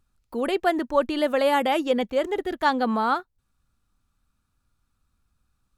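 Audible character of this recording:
background noise floor −74 dBFS
spectral slope −2.0 dB per octave

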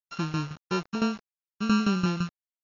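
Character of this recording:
a buzz of ramps at a fixed pitch in blocks of 32 samples
tremolo saw down 5.9 Hz, depth 80%
a quantiser's noise floor 8 bits, dither none
AC-3

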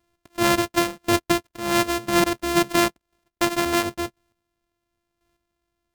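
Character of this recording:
a buzz of ramps at a fixed pitch in blocks of 128 samples
chopped level 0.96 Hz, depth 60%, duty 15%
AAC

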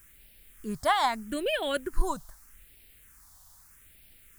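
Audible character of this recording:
a quantiser's noise floor 10 bits, dither triangular
phaser sweep stages 4, 0.8 Hz, lowest notch 400–1,100 Hz

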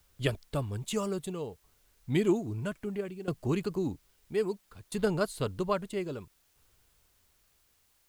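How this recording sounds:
tremolo saw down 0.61 Hz, depth 85%
a quantiser's noise floor 12 bits, dither triangular

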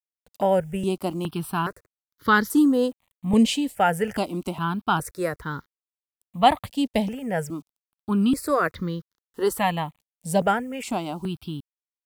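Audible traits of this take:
a quantiser's noise floor 10 bits, dither none
notches that jump at a steady rate 2.4 Hz 360–2,600 Hz

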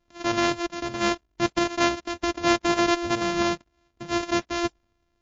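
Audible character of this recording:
a buzz of ramps at a fixed pitch in blocks of 128 samples
MP3

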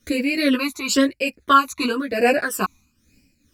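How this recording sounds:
phaser sweep stages 12, 1 Hz, lowest notch 520–1,200 Hz
tremolo triangle 2.3 Hz, depth 70%
a shimmering, thickened sound

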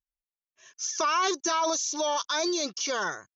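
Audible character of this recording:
background noise floor −97 dBFS
spectral slope 0.0 dB per octave

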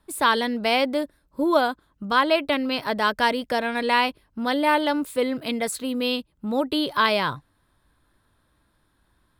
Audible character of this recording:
background noise floor −67 dBFS
spectral slope −1.0 dB per octave

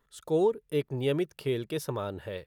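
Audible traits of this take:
background noise floor −73 dBFS
spectral slope −6.0 dB per octave

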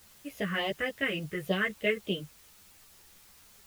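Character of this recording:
phaser sweep stages 4, 3.5 Hz, lowest notch 750–1,500 Hz
a quantiser's noise floor 10 bits, dither triangular
a shimmering, thickened sound

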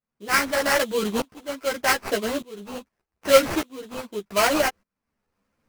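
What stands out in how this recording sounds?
tremolo saw up 0.83 Hz, depth 95%
aliases and images of a low sample rate 3,600 Hz, jitter 20%
a shimmering, thickened sound

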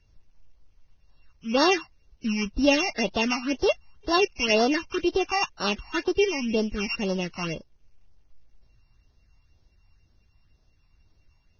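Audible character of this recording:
a buzz of ramps at a fixed pitch in blocks of 16 samples
phaser sweep stages 8, 2 Hz, lowest notch 450–2,400 Hz
a quantiser's noise floor 12 bits, dither none
Ogg Vorbis

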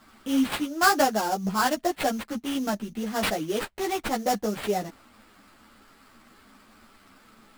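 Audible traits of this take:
aliases and images of a low sample rate 6,200 Hz, jitter 20%
a shimmering, thickened sound

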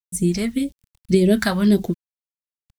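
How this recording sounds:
a quantiser's noise floor 10 bits, dither none
phaser sweep stages 2, 1.8 Hz, lowest notch 340–1,300 Hz

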